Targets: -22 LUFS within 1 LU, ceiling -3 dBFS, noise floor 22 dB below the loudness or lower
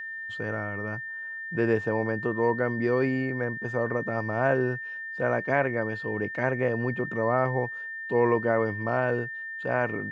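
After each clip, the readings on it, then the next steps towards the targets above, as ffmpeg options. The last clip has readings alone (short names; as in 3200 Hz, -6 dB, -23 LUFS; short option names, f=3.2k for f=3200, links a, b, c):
steady tone 1800 Hz; tone level -34 dBFS; loudness -27.5 LUFS; peak -9.5 dBFS; loudness target -22.0 LUFS
-> -af "bandreject=f=1.8k:w=30"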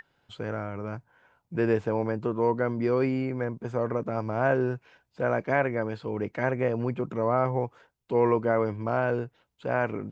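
steady tone none; loudness -28.0 LUFS; peak -10.0 dBFS; loudness target -22.0 LUFS
-> -af "volume=6dB"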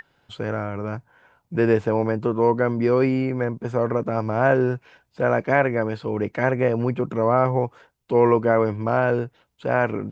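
loudness -22.0 LUFS; peak -4.0 dBFS; noise floor -67 dBFS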